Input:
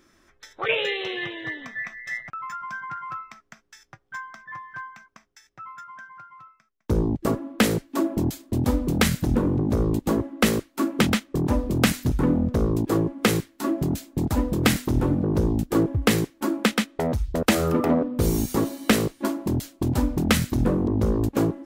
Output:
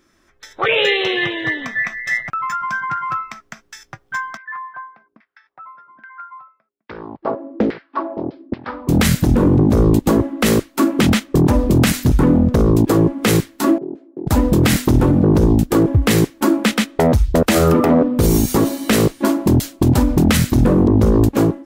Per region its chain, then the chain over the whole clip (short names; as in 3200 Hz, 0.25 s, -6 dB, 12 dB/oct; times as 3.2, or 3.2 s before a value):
4.37–8.89 steep low-pass 5200 Hz 72 dB/oct + LFO band-pass saw down 1.2 Hz 280–2100 Hz + Doppler distortion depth 0.44 ms
13.78–14.27 ladder band-pass 410 Hz, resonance 60% + compressor 1.5:1, threshold -40 dBFS
whole clip: limiter -16.5 dBFS; AGC gain up to 11.5 dB